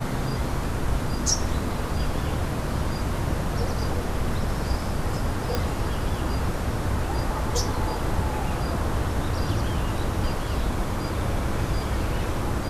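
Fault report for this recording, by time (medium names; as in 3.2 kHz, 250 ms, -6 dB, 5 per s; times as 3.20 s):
5.55 s: pop -10 dBFS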